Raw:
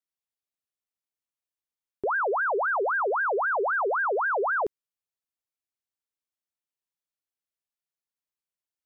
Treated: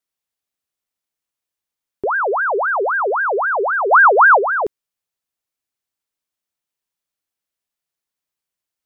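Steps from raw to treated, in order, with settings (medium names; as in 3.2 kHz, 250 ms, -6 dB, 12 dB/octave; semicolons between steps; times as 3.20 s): 3.91–4.39 s: peaking EQ 1.2 kHz +10.5 dB 2.2 oct; trim +7.5 dB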